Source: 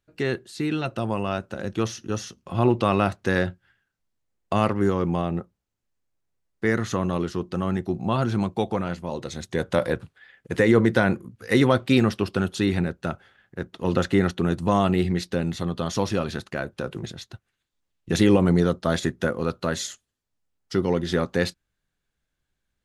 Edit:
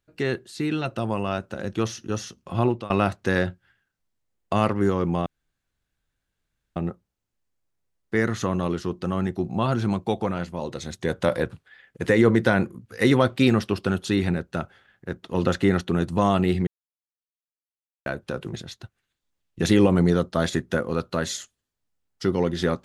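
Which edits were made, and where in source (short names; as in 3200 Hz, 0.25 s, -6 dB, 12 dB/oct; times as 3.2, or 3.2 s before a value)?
2.59–2.9 fade out, to -23 dB
5.26 insert room tone 1.50 s
15.17–16.56 mute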